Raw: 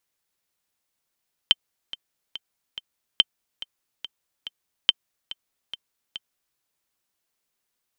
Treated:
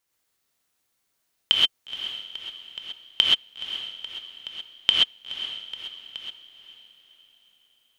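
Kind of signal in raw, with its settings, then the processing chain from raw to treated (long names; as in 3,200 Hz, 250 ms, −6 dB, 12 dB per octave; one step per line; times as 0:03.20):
click track 142 BPM, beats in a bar 4, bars 3, 3,110 Hz, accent 18 dB −2 dBFS
feedback delay with all-pass diffusion 485 ms, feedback 42%, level −12 dB
reverb whose tail is shaped and stops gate 150 ms rising, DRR −3 dB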